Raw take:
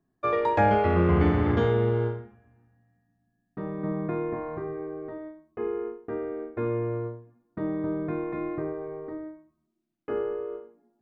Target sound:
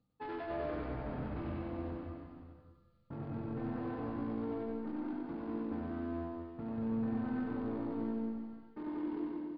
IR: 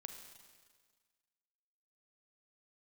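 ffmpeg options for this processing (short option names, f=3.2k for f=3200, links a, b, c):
-filter_complex "[0:a]aemphasis=mode=production:type=50fm,areverse,acompressor=threshold=-37dB:ratio=16,areverse,asetrate=50715,aresample=44100,aresample=16000,asoftclip=type=hard:threshold=-39.5dB,aresample=44100,asetrate=27781,aresample=44100,atempo=1.5874,aecho=1:1:96.21|186.6:0.708|0.562[a];[1:a]atrim=start_sample=2205,afade=t=out:st=0.39:d=0.01,atrim=end_sample=17640,asetrate=22491,aresample=44100[b];[a][b]afir=irnorm=-1:irlink=0,volume=2.5dB"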